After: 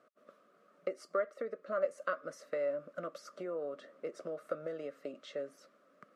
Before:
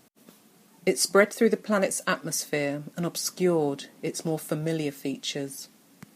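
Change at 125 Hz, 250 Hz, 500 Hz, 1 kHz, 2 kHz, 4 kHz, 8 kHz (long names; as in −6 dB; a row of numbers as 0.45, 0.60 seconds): −25.5, −21.0, −10.0, −11.0, −15.5, −24.0, −30.0 decibels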